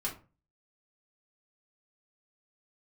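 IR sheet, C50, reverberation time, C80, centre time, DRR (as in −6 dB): 10.5 dB, 0.35 s, 17.0 dB, 18 ms, −5.0 dB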